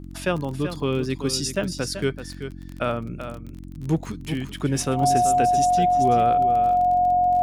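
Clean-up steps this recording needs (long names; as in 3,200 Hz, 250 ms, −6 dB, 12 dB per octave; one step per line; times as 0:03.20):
click removal
hum removal 45.2 Hz, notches 7
notch filter 720 Hz, Q 30
echo removal 383 ms −10 dB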